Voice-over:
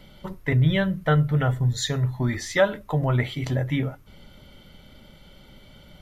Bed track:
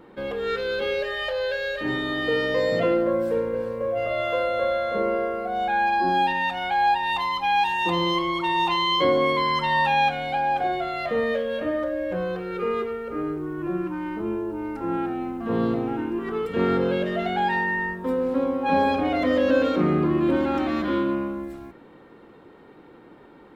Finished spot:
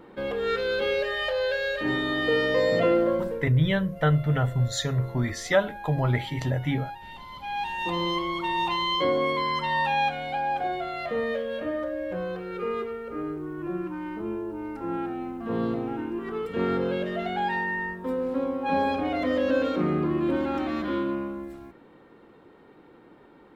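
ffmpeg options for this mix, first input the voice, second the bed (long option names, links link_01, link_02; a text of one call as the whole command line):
ffmpeg -i stem1.wav -i stem2.wav -filter_complex "[0:a]adelay=2950,volume=-2dB[link_01];[1:a]volume=14.5dB,afade=type=out:start_time=3.03:duration=0.45:silence=0.11885,afade=type=in:start_time=7.27:duration=0.75:silence=0.188365[link_02];[link_01][link_02]amix=inputs=2:normalize=0" out.wav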